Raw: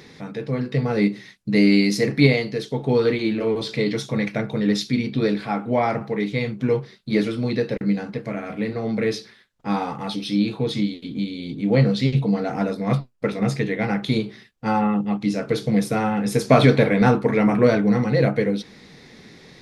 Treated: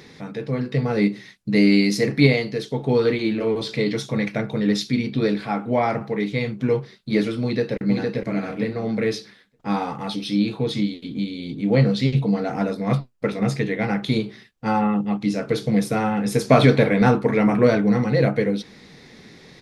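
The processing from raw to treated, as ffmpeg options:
-filter_complex "[0:a]asplit=2[a][b];[b]afade=t=in:st=7.43:d=0.01,afade=t=out:st=8.22:d=0.01,aecho=0:1:460|920|1380:0.668344|0.100252|0.0150377[c];[a][c]amix=inputs=2:normalize=0"

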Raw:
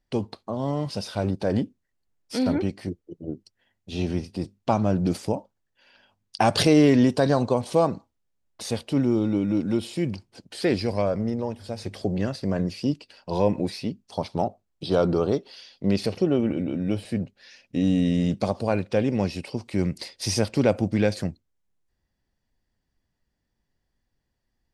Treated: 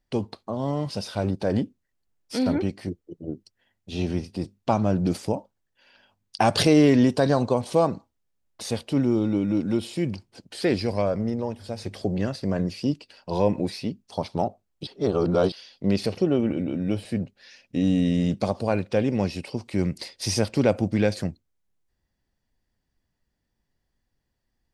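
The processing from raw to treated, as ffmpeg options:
-filter_complex "[0:a]asplit=3[a][b][c];[a]atrim=end=14.872[d];[b]atrim=start=14.868:end=15.522,asetpts=PTS-STARTPTS,areverse[e];[c]atrim=start=15.518[f];[d][e]acrossfade=d=0.004:c1=hsin:c2=hsin[g];[g][f]acrossfade=d=0.004:c1=hsin:c2=hsin"

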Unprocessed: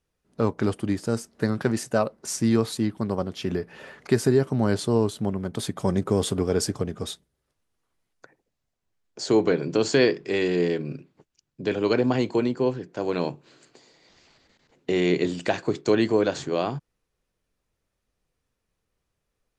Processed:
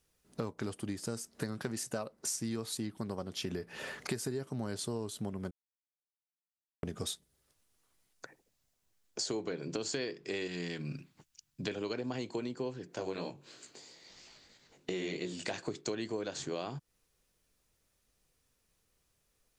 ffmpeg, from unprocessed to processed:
-filter_complex "[0:a]asettb=1/sr,asplit=3[a][b][c];[a]atrim=end=10.474[d];[b]atrim=start=10.47:end=11.68,asetpts=PTS-STARTPTS,afade=t=in:d=0.004:c=qsin,afade=t=out:st=1.206:d=0.004:c=qsin,equalizer=f=440:t=o:w=1.2:g=-11.5[e];[c]atrim=start=11.676[f];[d][e]acrossfade=d=0.004:c1=hsin:c2=qsin[g];[g][f]acrossfade=d=0.004:c1=qsin:c2=hsin,asettb=1/sr,asplit=3[h][i][j];[h]atrim=end=12.954[k];[i]atrim=start=12.95:end=15.52,asetpts=PTS-STARTPTS,afade=t=in:d=0.004:c=qsin,afade=t=out:st=2.566:d=0.004:c=qsin,flanger=delay=16.5:depth=4.6:speed=3[l];[j]atrim=start=15.516[m];[k][l]acrossfade=d=0.004:c1=hsin:c2=qsin[n];[n][m]acrossfade=d=0.004:c1=qsin:c2=hsin,asplit=3[o][p][q];[o]atrim=end=5.51,asetpts=PTS-STARTPTS,afade=t=out:st=5.506:d=0.004:c=hsin[r];[p]atrim=start=5.51:end=6.83,asetpts=PTS-STARTPTS,volume=0[s];[q]atrim=start=6.83,asetpts=PTS-STARTPTS,afade=t=in:d=0.004:c=hsin[t];[r][s][t]concat=n=3:v=0:a=1,highshelf=f=3.7k:g=11,acompressor=threshold=-35dB:ratio=6"

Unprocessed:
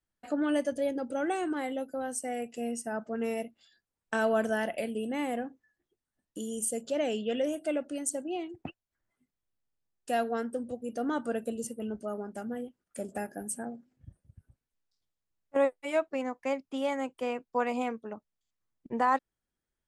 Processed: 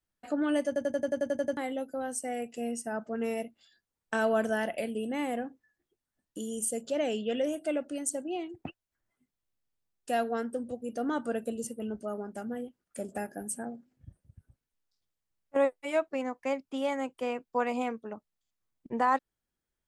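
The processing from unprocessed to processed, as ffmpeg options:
-filter_complex "[0:a]asplit=11[a][b][c][d][e][f][g][h][i][j][k];[a]atrim=end=0.762[l];[b]atrim=start=0.668:end=0.762[m];[c]atrim=start=0.668:end=0.762[n];[d]atrim=start=0.668:end=0.762[o];[e]atrim=start=0.668:end=0.762[p];[f]atrim=start=0.668:end=0.762[q];[g]atrim=start=0.668:end=0.762[r];[h]atrim=start=0.668:end=0.762[s];[i]atrim=start=0.668:end=0.762[t];[j]atrim=start=0.668:end=0.762[u];[k]atrim=start=1.568[v];[l][m]acrossfade=d=0.004:c1=hsin:c2=hsin[w];[w][n]acrossfade=d=0.004:c1=hsin:c2=hsin[x];[x][o]acrossfade=d=0.004:c1=hsin:c2=hsin[y];[y][p]acrossfade=d=0.004:c1=hsin:c2=hsin[z];[z][q]acrossfade=d=0.004:c1=hsin:c2=hsin[aa];[aa][r]acrossfade=d=0.004:c1=hsin:c2=hsin[ab];[ab][s]acrossfade=d=0.004:c1=hsin:c2=hsin[ac];[ac][t]acrossfade=d=0.004:c1=hsin:c2=hsin[ad];[ad][u]acrossfade=d=0.004:c1=hsin:c2=hsin[ae];[ae][v]acrossfade=d=0.004:c1=hsin:c2=hsin"

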